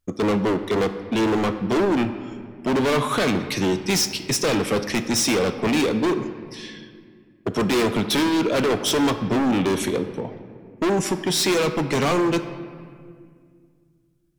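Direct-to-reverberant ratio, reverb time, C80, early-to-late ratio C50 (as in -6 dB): 9.5 dB, 2.1 s, 11.5 dB, 10.5 dB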